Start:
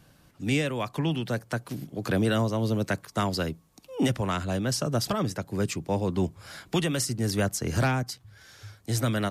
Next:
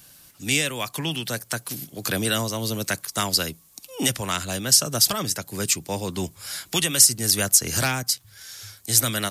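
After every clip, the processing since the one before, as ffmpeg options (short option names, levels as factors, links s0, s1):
-af "crystalizer=i=8.5:c=0,volume=0.708"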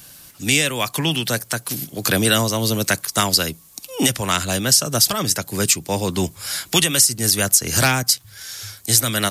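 -af "alimiter=limit=0.335:level=0:latency=1:release=293,volume=2.24"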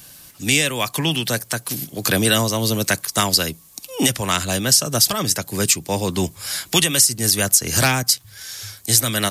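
-af "bandreject=f=1400:w=20"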